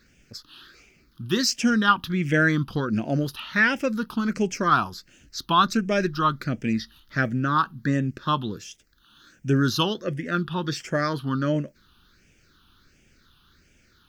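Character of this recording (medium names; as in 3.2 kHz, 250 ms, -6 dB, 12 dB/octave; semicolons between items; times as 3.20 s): phasing stages 6, 1.4 Hz, lowest notch 550–1100 Hz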